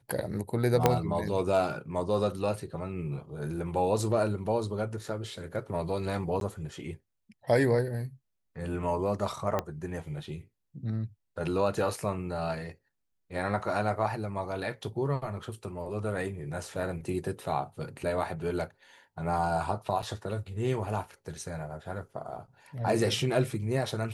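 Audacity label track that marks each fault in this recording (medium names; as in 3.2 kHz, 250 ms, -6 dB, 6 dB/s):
0.860000	0.860000	pop -7 dBFS
6.400000	6.410000	dropout 12 ms
9.590000	9.590000	pop -15 dBFS
20.020000	20.030000	dropout 6.7 ms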